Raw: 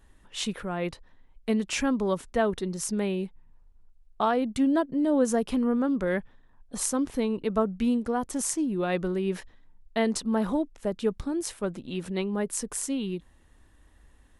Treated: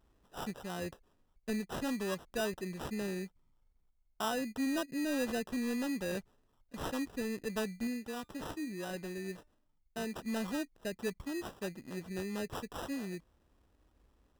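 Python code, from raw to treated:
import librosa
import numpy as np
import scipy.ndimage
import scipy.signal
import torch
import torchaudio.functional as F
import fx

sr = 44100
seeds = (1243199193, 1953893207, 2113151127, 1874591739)

y = fx.highpass(x, sr, hz=46.0, slope=6)
y = fx.sample_hold(y, sr, seeds[0], rate_hz=2200.0, jitter_pct=0)
y = fx.wow_flutter(y, sr, seeds[1], rate_hz=2.1, depth_cents=25.0)
y = fx.comb_fb(y, sr, f0_hz=300.0, decay_s=0.23, harmonics='all', damping=0.0, mix_pct=40, at=(7.87, 10.18))
y = 10.0 ** (-18.0 / 20.0) * np.tanh(y / 10.0 ** (-18.0 / 20.0))
y = y * librosa.db_to_amplitude(-8.5)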